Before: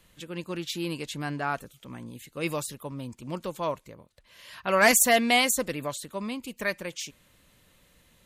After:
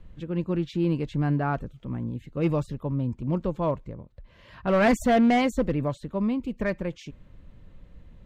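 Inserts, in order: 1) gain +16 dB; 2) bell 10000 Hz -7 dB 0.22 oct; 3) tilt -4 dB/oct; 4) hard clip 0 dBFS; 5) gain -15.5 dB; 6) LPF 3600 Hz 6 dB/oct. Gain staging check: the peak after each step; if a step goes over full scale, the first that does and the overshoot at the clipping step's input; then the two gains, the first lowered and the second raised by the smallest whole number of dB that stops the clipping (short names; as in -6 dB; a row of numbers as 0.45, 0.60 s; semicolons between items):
+7.5, +7.0, +9.0, 0.0, -15.5, -15.5 dBFS; step 1, 9.0 dB; step 1 +7 dB, step 5 -6.5 dB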